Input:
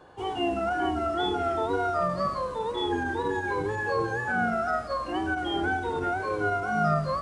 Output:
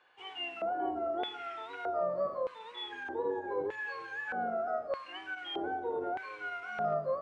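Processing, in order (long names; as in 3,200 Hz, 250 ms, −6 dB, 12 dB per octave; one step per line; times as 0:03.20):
hard clipping −17.5 dBFS, distortion −33 dB
auto-filter band-pass square 0.81 Hz 540–2,400 Hz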